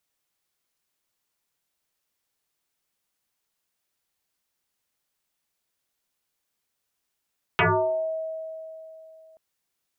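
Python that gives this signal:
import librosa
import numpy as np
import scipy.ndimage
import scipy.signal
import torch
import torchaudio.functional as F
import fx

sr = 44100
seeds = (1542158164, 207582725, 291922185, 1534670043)

y = fx.fm2(sr, length_s=1.78, level_db=-16, carrier_hz=641.0, ratio=0.42, index=9.3, index_s=0.61, decay_s=3.1, shape='exponential')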